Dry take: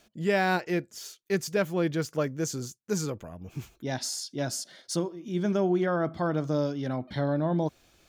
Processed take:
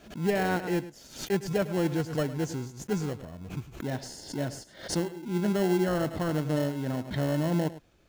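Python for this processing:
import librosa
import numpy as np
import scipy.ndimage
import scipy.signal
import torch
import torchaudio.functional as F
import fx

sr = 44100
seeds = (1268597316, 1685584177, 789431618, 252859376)

p1 = fx.high_shelf(x, sr, hz=2700.0, db=-9.5)
p2 = fx.sample_hold(p1, sr, seeds[0], rate_hz=1200.0, jitter_pct=0)
p3 = p1 + (p2 * 10.0 ** (-5.0 / 20.0))
p4 = p3 + 10.0 ** (-15.5 / 20.0) * np.pad(p3, (int(104 * sr / 1000.0), 0))[:len(p3)]
p5 = fx.pre_swell(p4, sr, db_per_s=120.0)
y = p5 * 10.0 ** (-3.0 / 20.0)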